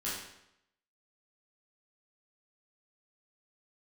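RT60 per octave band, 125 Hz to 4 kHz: 0.80, 0.80, 0.80, 0.80, 0.75, 0.70 seconds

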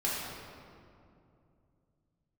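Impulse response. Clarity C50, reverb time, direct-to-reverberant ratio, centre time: −2.0 dB, 2.6 s, −7.5 dB, 132 ms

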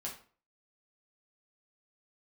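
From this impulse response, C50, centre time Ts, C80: 8.0 dB, 24 ms, 13.0 dB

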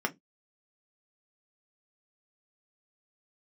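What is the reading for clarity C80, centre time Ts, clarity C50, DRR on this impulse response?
37.0 dB, 4 ms, 25.5 dB, 3.0 dB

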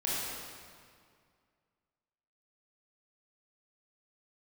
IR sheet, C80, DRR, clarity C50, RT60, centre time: −1.0 dB, −7.5 dB, −3.5 dB, 2.1 s, 144 ms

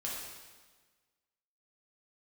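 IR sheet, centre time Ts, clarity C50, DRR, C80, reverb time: 81 ms, 0.0 dB, −5.5 dB, 2.5 dB, 1.4 s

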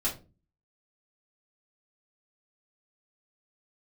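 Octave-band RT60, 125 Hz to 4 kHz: 0.55, 0.55, 0.40, 0.25, 0.25, 0.20 seconds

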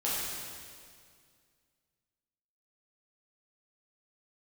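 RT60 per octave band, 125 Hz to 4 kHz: 2.5, 2.4, 2.2, 2.0, 2.0, 1.9 seconds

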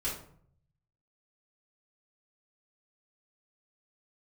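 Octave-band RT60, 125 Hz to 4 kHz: 1.2, 0.75, 0.60, 0.55, 0.45, 0.35 seconds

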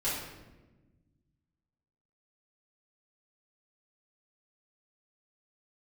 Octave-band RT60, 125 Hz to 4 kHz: 2.4, 2.1, 1.4, 0.95, 0.95, 0.75 seconds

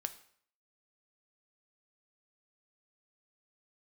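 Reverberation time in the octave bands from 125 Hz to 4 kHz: 0.60, 0.55, 0.55, 0.60, 0.55, 0.50 seconds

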